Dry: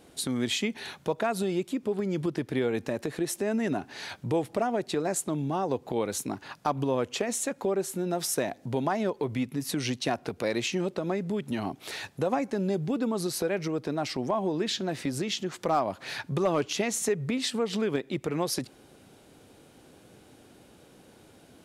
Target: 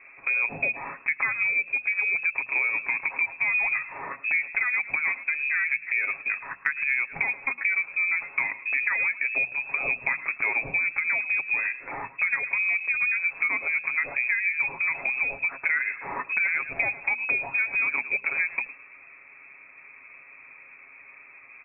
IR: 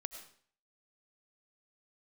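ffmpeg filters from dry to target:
-filter_complex "[0:a]equalizer=frequency=80:width_type=o:width=1.9:gain=-4,asplit=2[link_01][link_02];[link_02]asplit=3[link_03][link_04][link_05];[link_03]adelay=106,afreqshift=-74,volume=-18dB[link_06];[link_04]adelay=212,afreqshift=-148,volume=-28.2dB[link_07];[link_05]adelay=318,afreqshift=-222,volume=-38.3dB[link_08];[link_06][link_07][link_08]amix=inputs=3:normalize=0[link_09];[link_01][link_09]amix=inputs=2:normalize=0,lowpass=frequency=2300:width_type=q:width=0.5098,lowpass=frequency=2300:width_type=q:width=0.6013,lowpass=frequency=2300:width_type=q:width=0.9,lowpass=frequency=2300:width_type=q:width=2.563,afreqshift=-2700,bandreject=frequency=60:width_type=h:width=6,bandreject=frequency=120:width_type=h:width=6,bandreject=frequency=180:width_type=h:width=6,bandreject=frequency=240:width_type=h:width=6,aecho=1:1:7.3:0.5,acompressor=threshold=-28dB:ratio=6,volume=6dB"

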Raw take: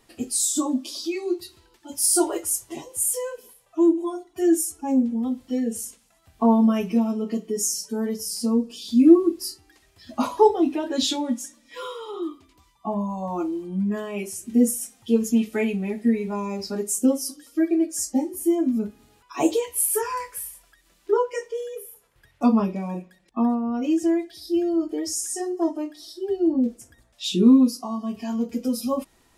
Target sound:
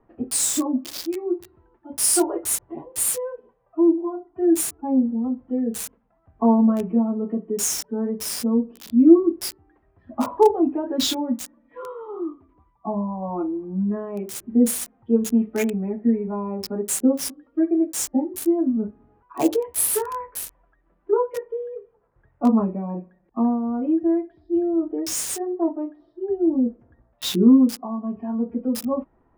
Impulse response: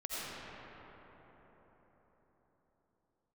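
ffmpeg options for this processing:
-filter_complex "[0:a]acrossover=split=200|1400[link_01][link_02][link_03];[link_03]acrusher=bits=4:mix=0:aa=0.000001[link_04];[link_01][link_02][link_04]amix=inputs=3:normalize=0,volume=1dB"

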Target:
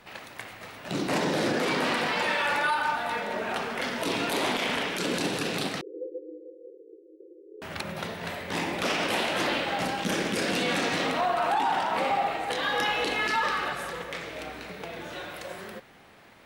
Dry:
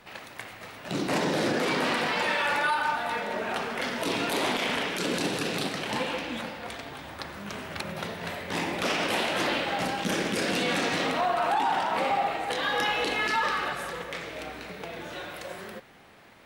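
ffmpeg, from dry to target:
ffmpeg -i in.wav -filter_complex "[0:a]asettb=1/sr,asplit=3[link_01][link_02][link_03];[link_01]atrim=end=5.814[link_04];[link_02]atrim=start=5.81:end=7.62,asetpts=PTS-STARTPTS,afade=type=in:duration=0.004:curve=qsin,afade=type=out:start_time=1.806:duration=0.004:curve=qsin,asuperpass=centerf=400:order=20:qfactor=1.9[link_05];[link_03]atrim=start=7.616[link_06];[link_04][link_05]acrossfade=duration=0.004:curve1=hsin:curve2=qsin[link_07];[link_07][link_06]acrossfade=duration=0.004:curve1=qsin:curve2=hsin" out.wav

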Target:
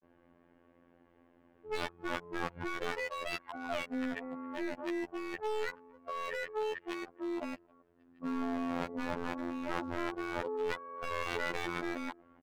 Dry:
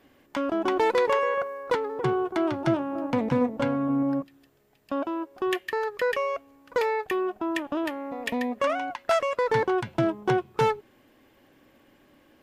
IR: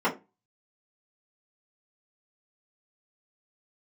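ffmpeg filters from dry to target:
-filter_complex "[0:a]areverse,lowpass=1500,asplit=2[link_01][link_02];[link_02]adelay=270,highpass=300,lowpass=3400,asoftclip=type=hard:threshold=-20dB,volume=-28dB[link_03];[link_01][link_03]amix=inputs=2:normalize=0,aeval=exprs='0.0596*(abs(mod(val(0)/0.0596+3,4)-2)-1)':channel_layout=same,afftfilt=real='hypot(re,im)*cos(PI*b)':imag='0':win_size=2048:overlap=0.75,volume=-2dB"

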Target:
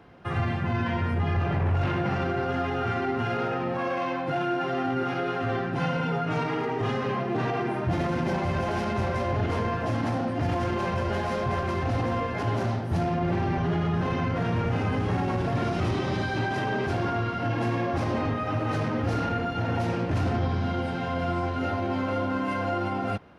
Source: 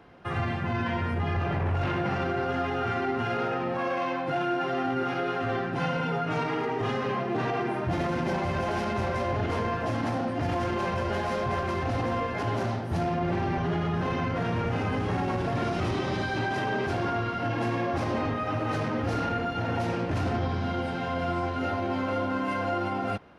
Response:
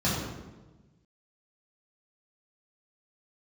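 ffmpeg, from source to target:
-af "equalizer=frequency=110:width=0.6:gain=3.5"

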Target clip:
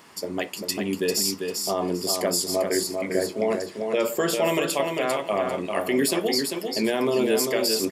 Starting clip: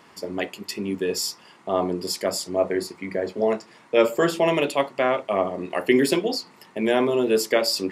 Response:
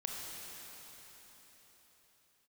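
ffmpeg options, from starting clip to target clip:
-af "highshelf=frequency=5800:gain=11.5,alimiter=limit=-14dB:level=0:latency=1:release=105,aecho=1:1:396|792|1188:0.562|0.129|0.0297"

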